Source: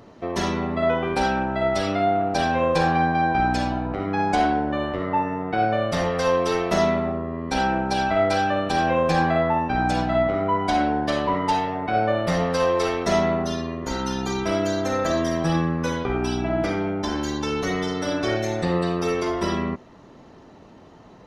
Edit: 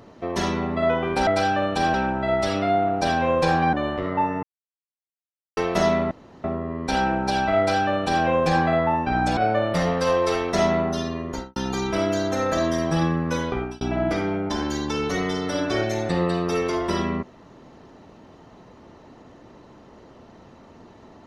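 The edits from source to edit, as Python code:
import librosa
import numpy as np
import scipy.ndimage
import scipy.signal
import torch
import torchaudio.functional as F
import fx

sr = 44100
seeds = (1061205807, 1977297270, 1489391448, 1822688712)

y = fx.studio_fade_out(x, sr, start_s=13.81, length_s=0.28)
y = fx.edit(y, sr, fx.cut(start_s=3.06, length_s=1.63),
    fx.silence(start_s=5.39, length_s=1.14),
    fx.insert_room_tone(at_s=7.07, length_s=0.33),
    fx.duplicate(start_s=8.21, length_s=0.67, to_s=1.27),
    fx.cut(start_s=10.0, length_s=1.9),
    fx.fade_out_span(start_s=16.05, length_s=0.29), tone=tone)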